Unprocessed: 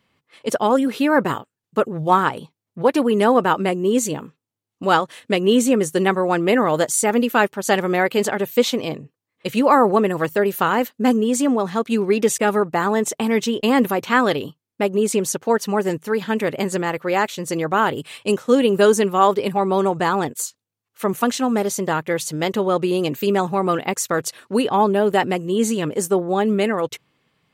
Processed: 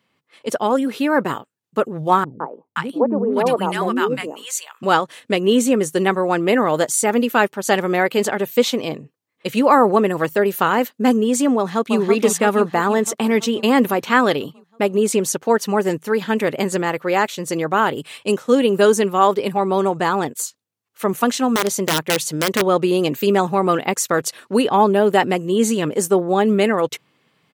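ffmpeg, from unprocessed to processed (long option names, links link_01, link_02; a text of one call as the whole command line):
ffmpeg -i in.wav -filter_complex "[0:a]asettb=1/sr,asplit=3[link_01][link_02][link_03];[link_01]atrim=end=2.244[link_04];[link_02]atrim=start=2.24:end=4.83,asetpts=PTS-STARTPTS,afade=type=in:duration=0.004:curve=qsin,afade=type=out:start_time=2.586:duration=0.004:curve=qsin,acrossover=split=300|1000[link_05][link_06][link_07];[link_06]adelay=160[link_08];[link_07]adelay=520[link_09];[link_05][link_08][link_09]amix=inputs=3:normalize=0,atrim=end_sample=114219[link_10];[link_03]atrim=start=4.826[link_11];[link_04][link_10]acrossfade=duration=0.004:curve1=hsin:curve2=qsin[link_12];[link_12][link_11]acrossfade=duration=0.004:curve1=qsin:curve2=hsin,asplit=2[link_13][link_14];[link_14]afade=type=in:start_time=11.57:duration=0.01,afade=type=out:start_time=11.99:duration=0.01,aecho=0:1:330|660|990|1320|1650|1980|2310|2640|2970|3300:0.530884|0.345075|0.224299|0.145794|0.0947662|0.061598|0.0400387|0.0260252|0.0169164|0.0109956[link_15];[link_13][link_15]amix=inputs=2:normalize=0,asettb=1/sr,asplit=3[link_16][link_17][link_18];[link_16]atrim=end=21.534[link_19];[link_17]atrim=start=21.53:end=22.67,asetpts=PTS-STARTPTS,afade=type=in:duration=0.004:curve=qsin,afade=type=out:start_time=1.136:duration=0.004:curve=qsin,aeval=exprs='(mod(4.22*val(0)+1,2)-1)/4.22':channel_layout=same[link_20];[link_18]atrim=start=22.666[link_21];[link_19][link_20]acrossfade=duration=0.004:curve1=hsin:curve2=qsin[link_22];[link_22][link_21]acrossfade=duration=0.004:curve1=qsin:curve2=hsin,highpass=130,dynaudnorm=framelen=130:gausssize=31:maxgain=11.5dB,volume=-1dB" out.wav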